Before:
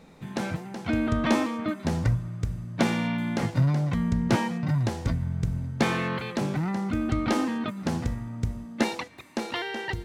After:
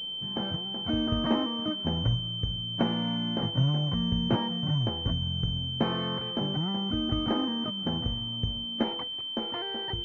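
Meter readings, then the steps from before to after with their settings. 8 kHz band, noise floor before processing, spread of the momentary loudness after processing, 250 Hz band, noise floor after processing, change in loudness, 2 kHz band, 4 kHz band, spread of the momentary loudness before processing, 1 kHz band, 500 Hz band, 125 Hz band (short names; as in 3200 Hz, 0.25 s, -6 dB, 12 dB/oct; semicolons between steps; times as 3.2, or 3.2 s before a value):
under -20 dB, -44 dBFS, 5 LU, -3.0 dB, -36 dBFS, -1.0 dB, -11.0 dB, +12.0 dB, 8 LU, -4.0 dB, -3.0 dB, -3.0 dB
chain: pulse-width modulation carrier 3100 Hz; gain -3 dB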